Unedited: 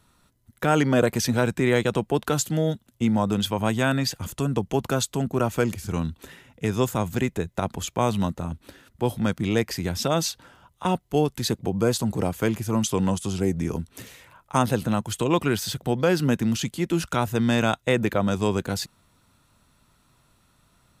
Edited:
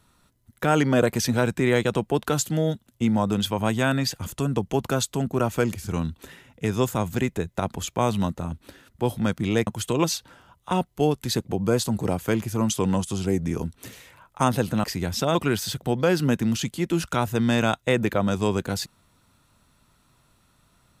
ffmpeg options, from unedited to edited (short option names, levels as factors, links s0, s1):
-filter_complex "[0:a]asplit=5[s0][s1][s2][s3][s4];[s0]atrim=end=9.672[s5];[s1]atrim=start=14.978:end=15.352[s6];[s2]atrim=start=10.178:end=14.982[s7];[s3]atrim=start=9.668:end=10.182[s8];[s4]atrim=start=15.348[s9];[s5][s6]acrossfade=d=0.004:c1=hsin:c2=hsin[s10];[s10][s7]acrossfade=d=0.004:c1=hsin:c2=hsin[s11];[s11][s8]acrossfade=d=0.004:c1=hsin:c2=hsin[s12];[s12][s9]acrossfade=d=0.004:c1=hsin:c2=hsin"